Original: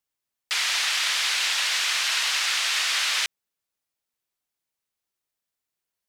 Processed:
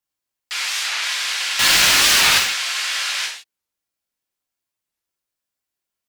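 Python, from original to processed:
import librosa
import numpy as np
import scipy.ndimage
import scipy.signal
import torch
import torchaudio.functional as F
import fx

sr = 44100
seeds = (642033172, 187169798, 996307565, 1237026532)

y = fx.leveller(x, sr, passes=5, at=(1.59, 2.38))
y = fx.rev_gated(y, sr, seeds[0], gate_ms=200, shape='falling', drr_db=-2.5)
y = fx.record_warp(y, sr, rpm=45.0, depth_cents=250.0)
y = y * 10.0 ** (-3.0 / 20.0)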